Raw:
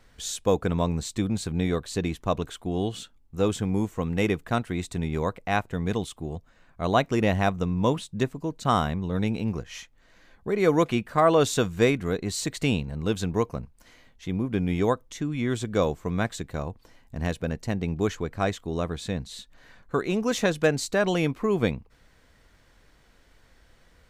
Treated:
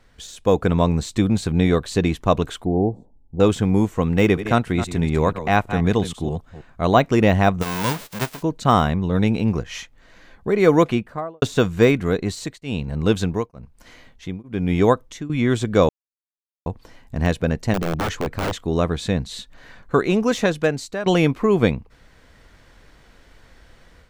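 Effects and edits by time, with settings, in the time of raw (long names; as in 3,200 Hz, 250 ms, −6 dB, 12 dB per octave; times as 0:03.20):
0:02.65–0:03.40: elliptic low-pass filter 860 Hz
0:04.20–0:06.95: delay that plays each chunk backwards 161 ms, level −12 dB
0:07.61–0:08.41: spectral envelope flattened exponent 0.1
0:10.77–0:11.42: fade out and dull
0:12.16–0:15.30: tremolo along a rectified sine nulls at 1.1 Hz
0:15.89–0:16.66: silence
0:17.74–0:18.64: wrap-around overflow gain 22 dB
0:20.00–0:21.06: fade out, to −14 dB
whole clip: de-essing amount 75%; high-shelf EQ 6,800 Hz −5.5 dB; automatic gain control gain up to 7 dB; level +1.5 dB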